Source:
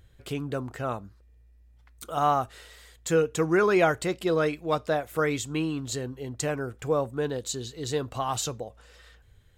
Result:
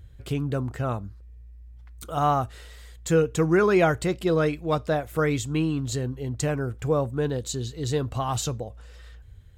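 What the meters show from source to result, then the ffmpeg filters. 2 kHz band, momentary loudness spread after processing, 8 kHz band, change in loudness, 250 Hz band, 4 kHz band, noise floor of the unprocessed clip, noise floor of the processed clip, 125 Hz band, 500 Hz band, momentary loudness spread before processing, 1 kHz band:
0.0 dB, 12 LU, 0.0 dB, +2.0 dB, +3.5 dB, 0.0 dB, −57 dBFS, −46 dBFS, +7.5 dB, +1.5 dB, 13 LU, +0.5 dB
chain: -af "equalizer=frequency=65:width=0.4:gain=11.5"

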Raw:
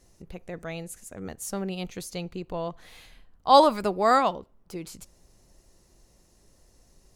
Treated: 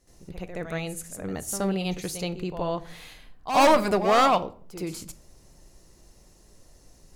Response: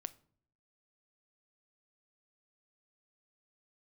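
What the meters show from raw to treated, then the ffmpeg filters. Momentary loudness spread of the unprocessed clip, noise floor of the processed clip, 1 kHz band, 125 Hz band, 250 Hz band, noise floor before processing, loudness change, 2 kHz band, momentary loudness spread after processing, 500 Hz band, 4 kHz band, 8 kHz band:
22 LU, −56 dBFS, −0.5 dB, +5.0 dB, +3.0 dB, −62 dBFS, 0.0 dB, +5.5 dB, 21 LU, +1.0 dB, +1.0 dB, +5.5 dB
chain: -filter_complex "[0:a]asoftclip=type=hard:threshold=-19dB,asplit=2[link_01][link_02];[1:a]atrim=start_sample=2205,afade=type=out:start_time=0.37:duration=0.01,atrim=end_sample=16758,adelay=73[link_03];[link_02][link_03]afir=irnorm=-1:irlink=0,volume=13dB[link_04];[link_01][link_04]amix=inputs=2:normalize=0,volume=-5.5dB"

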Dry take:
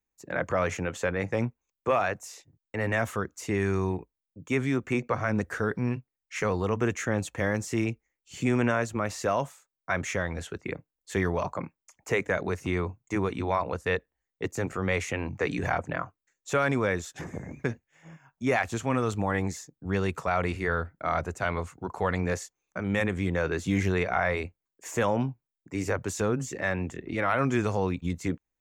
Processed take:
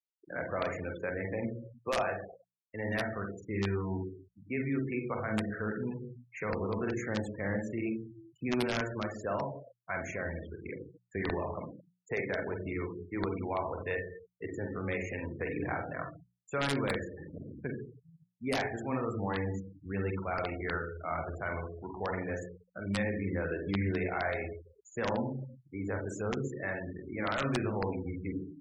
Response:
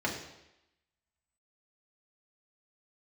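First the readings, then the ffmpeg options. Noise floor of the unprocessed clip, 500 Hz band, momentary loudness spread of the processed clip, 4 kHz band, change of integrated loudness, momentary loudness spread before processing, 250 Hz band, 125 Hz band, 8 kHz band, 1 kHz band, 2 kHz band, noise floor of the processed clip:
below −85 dBFS, −6.0 dB, 10 LU, −3.0 dB, −6.0 dB, 11 LU, −5.0 dB, −6.5 dB, −12.5 dB, −7.0 dB, −6.5 dB, −75 dBFS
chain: -filter_complex "[0:a]asplit=2[link_01][link_02];[1:a]atrim=start_sample=2205,adelay=44[link_03];[link_02][link_03]afir=irnorm=-1:irlink=0,volume=-10dB[link_04];[link_01][link_04]amix=inputs=2:normalize=0,aeval=exprs='(mod(4.47*val(0)+1,2)-1)/4.47':channel_layout=same,afftfilt=real='re*gte(hypot(re,im),0.0355)':imag='im*gte(hypot(re,im),0.0355)':win_size=1024:overlap=0.75,bandreject=frequency=60:width_type=h:width=6,bandreject=frequency=120:width_type=h:width=6,bandreject=frequency=180:width_type=h:width=6,volume=-8.5dB"

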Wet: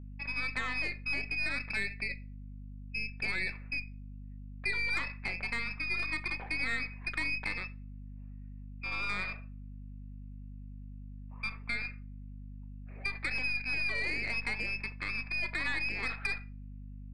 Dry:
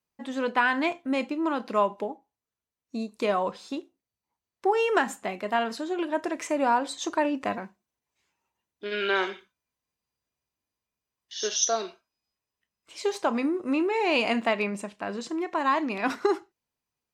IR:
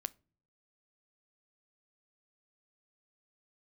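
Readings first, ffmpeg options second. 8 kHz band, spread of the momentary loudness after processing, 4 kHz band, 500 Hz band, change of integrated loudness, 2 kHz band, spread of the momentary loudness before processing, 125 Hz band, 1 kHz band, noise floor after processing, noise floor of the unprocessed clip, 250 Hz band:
−22.0 dB, 17 LU, −6.0 dB, −23.5 dB, −6.5 dB, 0.0 dB, 12 LU, can't be measured, −18.0 dB, −45 dBFS, below −85 dBFS, −17.5 dB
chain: -filter_complex "[0:a]acrossover=split=1000|2200[link_01][link_02][link_03];[link_01]acompressor=threshold=-29dB:ratio=4[link_04];[link_02]acompressor=threshold=-41dB:ratio=4[link_05];[link_03]acompressor=threshold=-48dB:ratio=4[link_06];[link_04][link_05][link_06]amix=inputs=3:normalize=0,asplit=2[link_07][link_08];[link_08]alimiter=level_in=5.5dB:limit=-24dB:level=0:latency=1:release=18,volume=-5.5dB,volume=0dB[link_09];[link_07][link_09]amix=inputs=2:normalize=0,lowpass=frequency=2400:width_type=q:width=0.5098,lowpass=frequency=2400:width_type=q:width=0.6013,lowpass=frequency=2400:width_type=q:width=0.9,lowpass=frequency=2400:width_type=q:width=2.563,afreqshift=-2800,aeval=exprs='0.316*(cos(1*acos(clip(val(0)/0.316,-1,1)))-cos(1*PI/2))+0.0282*(cos(8*acos(clip(val(0)/0.316,-1,1)))-cos(8*PI/2))':channel_layout=same[link_10];[1:a]atrim=start_sample=2205,asetrate=34839,aresample=44100[link_11];[link_10][link_11]afir=irnorm=-1:irlink=0,aeval=exprs='val(0)+0.0141*(sin(2*PI*50*n/s)+sin(2*PI*2*50*n/s)/2+sin(2*PI*3*50*n/s)/3+sin(2*PI*4*50*n/s)/4+sin(2*PI*5*50*n/s)/5)':channel_layout=same,volume=-7dB"

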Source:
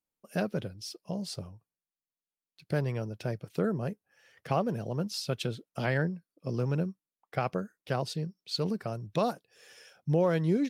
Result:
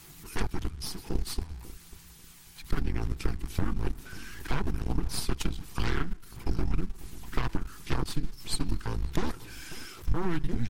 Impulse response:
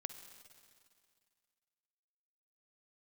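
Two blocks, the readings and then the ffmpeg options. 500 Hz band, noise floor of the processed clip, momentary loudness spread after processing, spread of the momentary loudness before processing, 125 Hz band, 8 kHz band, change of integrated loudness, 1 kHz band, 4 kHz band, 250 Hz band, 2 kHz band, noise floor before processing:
−9.0 dB, −52 dBFS, 11 LU, 10 LU, −1.5 dB, +6.0 dB, −2.0 dB, −3.5 dB, +0.5 dB, −3.0 dB, −0.5 dB, below −85 dBFS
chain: -filter_complex "[0:a]aeval=exprs='val(0)+0.5*0.00794*sgn(val(0))':channel_layout=same,afreqshift=-170,asplit=2[link_01][link_02];[1:a]atrim=start_sample=2205,adelay=6[link_03];[link_02][link_03]afir=irnorm=-1:irlink=0,volume=-11.5dB[link_04];[link_01][link_04]amix=inputs=2:normalize=0,aeval=exprs='0.2*(cos(1*acos(clip(val(0)/0.2,-1,1)))-cos(1*PI/2))+0.1*(cos(6*acos(clip(val(0)/0.2,-1,1)))-cos(6*PI/2))+0.00282*(cos(8*acos(clip(val(0)/0.2,-1,1)))-cos(8*PI/2))':channel_layout=same,aphaser=in_gain=1:out_gain=1:delay=1.3:decay=0.22:speed=0.99:type=sinusoidal,equalizer=frequency=580:width=3:gain=-14,acompressor=threshold=-26dB:ratio=4,lowshelf=frequency=170:gain=5,asplit=2[link_05][link_06];[link_06]adelay=543,lowpass=frequency=1100:poles=1,volume=-17dB,asplit=2[link_07][link_08];[link_08]adelay=543,lowpass=frequency=1100:poles=1,volume=0.26[link_09];[link_07][link_09]amix=inputs=2:normalize=0[link_10];[link_05][link_10]amix=inputs=2:normalize=0" -ar 44100 -c:a libmp3lame -b:a 64k

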